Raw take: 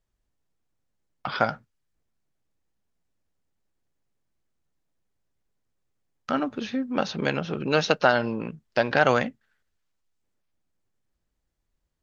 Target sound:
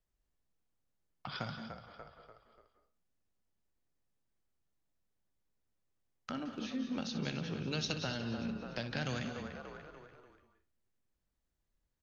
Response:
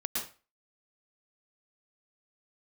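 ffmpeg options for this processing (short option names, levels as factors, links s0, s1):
-filter_complex "[0:a]asplit=2[s0][s1];[s1]asplit=4[s2][s3][s4][s5];[s2]adelay=292,afreqshift=-38,volume=0.2[s6];[s3]adelay=584,afreqshift=-76,volume=0.0822[s7];[s4]adelay=876,afreqshift=-114,volume=0.0335[s8];[s5]adelay=1168,afreqshift=-152,volume=0.0138[s9];[s6][s7][s8][s9]amix=inputs=4:normalize=0[s10];[s0][s10]amix=inputs=2:normalize=0,acrossover=split=220|3000[s11][s12][s13];[s12]acompressor=threshold=0.0126:ratio=4[s14];[s11][s14][s13]amix=inputs=3:normalize=0,asplit=2[s15][s16];[1:a]atrim=start_sample=2205,adelay=61[s17];[s16][s17]afir=irnorm=-1:irlink=0,volume=0.299[s18];[s15][s18]amix=inputs=2:normalize=0,volume=0.473"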